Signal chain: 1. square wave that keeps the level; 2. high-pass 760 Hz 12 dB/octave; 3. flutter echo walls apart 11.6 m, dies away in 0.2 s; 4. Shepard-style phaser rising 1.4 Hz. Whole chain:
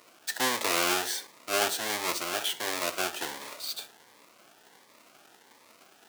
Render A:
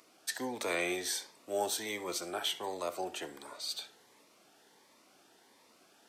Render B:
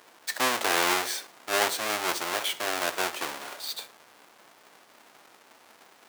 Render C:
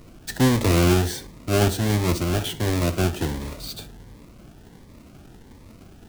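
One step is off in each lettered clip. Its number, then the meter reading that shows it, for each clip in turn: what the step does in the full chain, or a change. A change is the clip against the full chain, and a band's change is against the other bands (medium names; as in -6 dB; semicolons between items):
1, distortion -5 dB; 4, 1 kHz band +2.5 dB; 2, 125 Hz band +31.0 dB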